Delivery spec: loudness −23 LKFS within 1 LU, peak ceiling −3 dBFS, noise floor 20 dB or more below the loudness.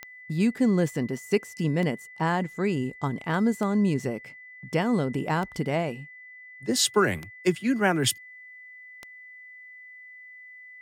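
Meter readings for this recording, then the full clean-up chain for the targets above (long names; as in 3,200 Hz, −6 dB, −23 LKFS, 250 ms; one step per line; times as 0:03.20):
number of clicks 6; interfering tone 2,000 Hz; level of the tone −44 dBFS; integrated loudness −26.5 LKFS; sample peak −9.5 dBFS; target loudness −23.0 LKFS
→ click removal
notch filter 2,000 Hz, Q 30
level +3.5 dB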